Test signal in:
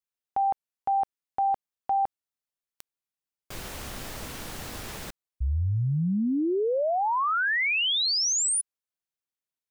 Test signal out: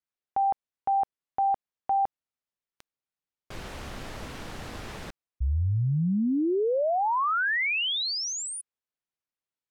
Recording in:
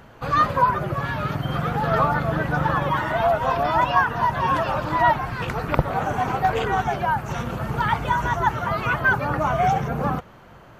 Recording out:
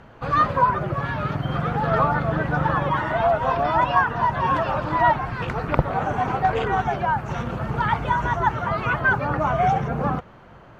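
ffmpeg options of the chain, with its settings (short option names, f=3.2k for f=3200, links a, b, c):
-af "aemphasis=mode=reproduction:type=50fm"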